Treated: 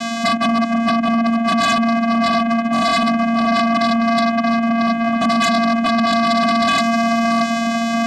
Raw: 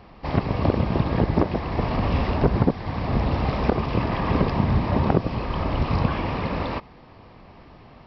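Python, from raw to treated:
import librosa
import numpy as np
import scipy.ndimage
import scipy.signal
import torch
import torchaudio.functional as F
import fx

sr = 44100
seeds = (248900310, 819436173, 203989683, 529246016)

p1 = fx.cvsd(x, sr, bps=16000)
p2 = fx.quant_dither(p1, sr, seeds[0], bits=6, dither='triangular')
p3 = p1 + (p2 * librosa.db_to_amplitude(-5.5))
p4 = fx.hum_notches(p3, sr, base_hz=50, count=4)
p5 = p4 + 0.82 * np.pad(p4, (int(6.6 * sr / 1000.0), 0))[:len(p4)]
p6 = fx.over_compress(p5, sr, threshold_db=-24.0, ratio=-0.5)
p7 = fx.peak_eq(p6, sr, hz=250.0, db=-15.0, octaves=0.4)
p8 = fx.fixed_phaser(p7, sr, hz=610.0, stages=6)
p9 = p8 + fx.echo_filtered(p8, sr, ms=629, feedback_pct=47, hz=2400.0, wet_db=-4.5, dry=0)
p10 = fx.vocoder(p9, sr, bands=4, carrier='square', carrier_hz=230.0)
y = fx.fold_sine(p10, sr, drive_db=16, ceiling_db=-12.5)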